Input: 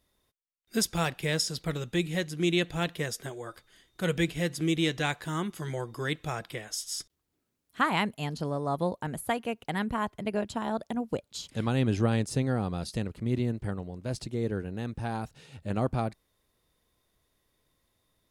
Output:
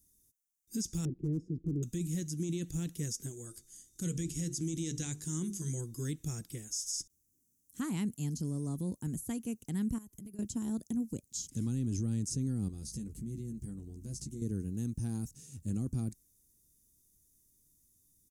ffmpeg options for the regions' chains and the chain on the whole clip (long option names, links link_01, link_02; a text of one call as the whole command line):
ffmpeg -i in.wav -filter_complex "[0:a]asettb=1/sr,asplit=3[link_01][link_02][link_03];[link_01]atrim=end=1.054[link_04];[link_02]atrim=start=1.05:end=1.83,asetpts=PTS-STARTPTS,afade=type=in:duration=0.004:curve=qsin,afade=type=out:start_time=0.776:duration=0.004:curve=qsin,lowpass=frequency=350:width_type=q:width=3.2,volume=22dB,asoftclip=hard,volume=-22dB[link_05];[link_03]atrim=start=1.826[link_06];[link_04][link_05]acrossfade=duration=0.004:curve1=hsin:curve2=qsin[link_07];[link_07][link_06]acrossfade=duration=0.004:curve1=qsin:curve2=hsin,asettb=1/sr,asplit=3[link_08][link_09][link_10];[link_08]atrim=end=3.454[link_11];[link_09]atrim=start=3.45:end=5.81,asetpts=PTS-STARTPTS,afade=type=in:duration=0.004:curve=qsin,afade=type=out:start_time=2.356:duration=0.004:curve=qsin,lowpass=8800,highshelf=frequency=6100:gain=11.5,bandreject=frequency=50:width_type=h:width=6,bandreject=frequency=100:width_type=h:width=6,bandreject=frequency=150:width_type=h:width=6,bandreject=frequency=200:width_type=h:width=6,bandreject=frequency=250:width_type=h:width=6,bandreject=frequency=300:width_type=h:width=6,bandreject=frequency=350:width_type=h:width=6,bandreject=frequency=400:width_type=h:width=6,bandreject=frequency=450:width_type=h:width=6[link_12];[link_10]atrim=start=5.806[link_13];[link_11][link_12]acrossfade=duration=0.004:curve1=hsin:curve2=qsin[link_14];[link_14][link_13]acrossfade=duration=0.004:curve1=qsin:curve2=hsin,asettb=1/sr,asplit=3[link_15][link_16][link_17];[link_15]atrim=end=9.984[link_18];[link_16]atrim=start=9.98:end=10.39,asetpts=PTS-STARTPTS,afade=type=in:duration=0.004:curve=qsin,afade=type=out:start_time=0.406:duration=0.004:curve=qsin,equalizer=frequency=13000:width_type=o:width=0.55:gain=11.5,acompressor=threshold=-43dB:ratio=6:attack=3.2:release=140:knee=1:detection=peak[link_19];[link_17]atrim=start=10.386[link_20];[link_18][link_19]acrossfade=duration=0.004:curve1=hsin:curve2=qsin[link_21];[link_21][link_20]acrossfade=duration=0.004:curve1=qsin:curve2=hsin,asettb=1/sr,asplit=3[link_22][link_23][link_24];[link_22]atrim=end=12.684[link_25];[link_23]atrim=start=12.68:end=14.42,asetpts=PTS-STARTPTS,afade=type=in:duration=0.004:curve=qsin,afade=type=out:start_time=1.736:duration=0.004:curve=qsin,acompressor=threshold=-41dB:ratio=2.5:attack=3.2:release=140:knee=1:detection=peak,aeval=exprs='val(0)+0.00178*(sin(2*PI*50*n/s)+sin(2*PI*2*50*n/s)/2+sin(2*PI*3*50*n/s)/3+sin(2*PI*4*50*n/s)/4+sin(2*PI*5*50*n/s)/5)':channel_layout=same,asplit=2[link_26][link_27];[link_27]adelay=14,volume=-4.5dB[link_28];[link_26][link_28]amix=inputs=2:normalize=0,atrim=end_sample=76734[link_29];[link_24]atrim=start=14.416[link_30];[link_25][link_29]acrossfade=duration=0.004:curve1=hsin:curve2=qsin[link_31];[link_31][link_30]acrossfade=duration=0.004:curve1=qsin:curve2=hsin,acrossover=split=6100[link_32][link_33];[link_33]acompressor=threshold=-58dB:ratio=4:attack=1:release=60[link_34];[link_32][link_34]amix=inputs=2:normalize=0,firequalizer=gain_entry='entry(270,0);entry(610,-23);entry(4100,-12);entry(6100,11)':delay=0.05:min_phase=1,alimiter=level_in=3dB:limit=-24dB:level=0:latency=1:release=11,volume=-3dB" out.wav